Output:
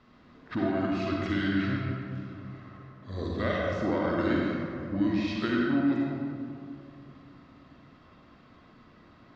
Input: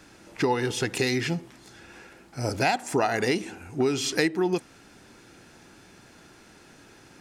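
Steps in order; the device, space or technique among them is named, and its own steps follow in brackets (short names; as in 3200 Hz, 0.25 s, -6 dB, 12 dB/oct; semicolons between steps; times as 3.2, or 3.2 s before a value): slowed and reverbed (varispeed -23%; reverb RT60 2.5 s, pre-delay 42 ms, DRR -3 dB); air absorption 230 m; gain -7.5 dB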